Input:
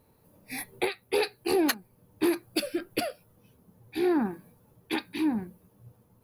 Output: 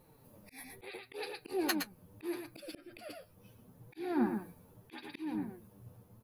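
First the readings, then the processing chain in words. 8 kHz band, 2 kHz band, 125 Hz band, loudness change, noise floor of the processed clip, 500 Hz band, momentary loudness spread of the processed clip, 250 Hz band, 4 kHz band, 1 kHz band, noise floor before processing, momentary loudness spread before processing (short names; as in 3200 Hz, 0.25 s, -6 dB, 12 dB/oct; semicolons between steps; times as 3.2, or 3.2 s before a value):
-9.0 dB, -9.5 dB, -4.5 dB, -9.5 dB, -64 dBFS, -12.0 dB, 23 LU, -8.5 dB, -10.0 dB, -8.5 dB, -64 dBFS, 12 LU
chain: echo 0.115 s -10 dB; flange 0.76 Hz, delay 5.5 ms, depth 6.3 ms, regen +29%; auto swell 0.495 s; gain +4.5 dB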